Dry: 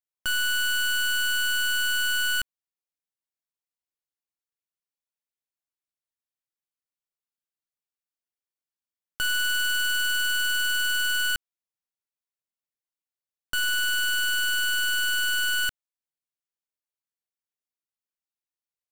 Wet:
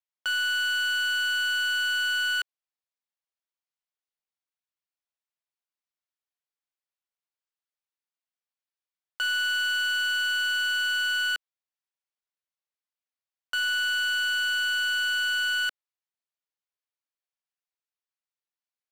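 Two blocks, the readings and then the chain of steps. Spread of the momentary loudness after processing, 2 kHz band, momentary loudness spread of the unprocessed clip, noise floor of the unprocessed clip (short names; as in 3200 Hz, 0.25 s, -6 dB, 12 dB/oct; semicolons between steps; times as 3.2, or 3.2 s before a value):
4 LU, 0.0 dB, 4 LU, under -85 dBFS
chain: three-band isolator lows -23 dB, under 450 Hz, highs -13 dB, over 5900 Hz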